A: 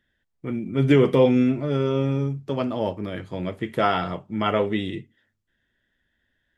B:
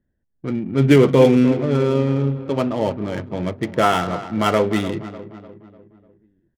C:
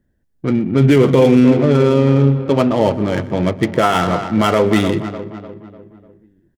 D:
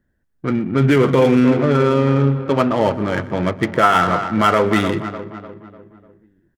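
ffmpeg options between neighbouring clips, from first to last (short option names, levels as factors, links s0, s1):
-af "aecho=1:1:299|598|897|1196|1495:0.211|0.108|0.055|0.028|0.0143,adynamicsmooth=sensitivity=7.5:basefreq=610,volume=1.68"
-af "alimiter=limit=0.299:level=0:latency=1:release=72,aecho=1:1:123:0.112,volume=2.37"
-af "equalizer=f=1400:t=o:w=1.2:g=8,volume=0.668"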